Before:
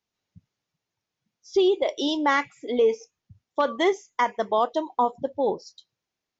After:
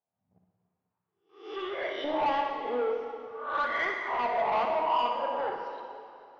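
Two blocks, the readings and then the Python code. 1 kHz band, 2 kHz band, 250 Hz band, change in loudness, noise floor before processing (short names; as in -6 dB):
-1.5 dB, -2.5 dB, -13.0 dB, -5.5 dB, under -85 dBFS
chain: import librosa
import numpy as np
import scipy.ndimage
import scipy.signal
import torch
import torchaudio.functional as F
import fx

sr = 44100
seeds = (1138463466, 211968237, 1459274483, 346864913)

p1 = fx.spec_swells(x, sr, rise_s=0.5)
p2 = fx.low_shelf(p1, sr, hz=360.0, db=-2.0)
p3 = fx.leveller(p2, sr, passes=1)
p4 = np.clip(p3, -10.0 ** (-22.0 / 20.0), 10.0 ** (-22.0 / 20.0))
p5 = p3 + (p4 * 10.0 ** (-7.5 / 20.0))
p6 = fx.filter_lfo_bandpass(p5, sr, shape='saw_up', hz=0.49, low_hz=670.0, high_hz=1900.0, q=3.0)
p7 = 10.0 ** (-26.5 / 20.0) * np.tanh(p6 / 10.0 ** (-26.5 / 20.0))
p8 = fx.air_absorb(p7, sr, metres=250.0)
p9 = fx.room_flutter(p8, sr, wall_m=10.4, rt60_s=0.45)
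p10 = fx.rev_plate(p9, sr, seeds[0], rt60_s=2.7, hf_ratio=0.9, predelay_ms=0, drr_db=3.0)
y = p10 * 10.0 ** (1.5 / 20.0)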